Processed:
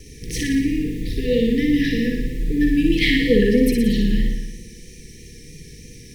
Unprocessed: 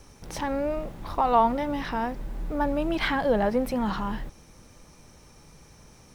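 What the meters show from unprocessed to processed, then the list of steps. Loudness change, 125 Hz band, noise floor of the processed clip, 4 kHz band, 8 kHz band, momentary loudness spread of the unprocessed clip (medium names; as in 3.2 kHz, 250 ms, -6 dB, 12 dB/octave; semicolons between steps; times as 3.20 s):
+7.5 dB, +12.0 dB, -42 dBFS, +11.5 dB, +11.5 dB, 12 LU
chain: flutter echo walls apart 10 m, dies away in 1 s; FFT band-reject 500–1700 Hz; vibrato 3.1 Hz 30 cents; trim +9 dB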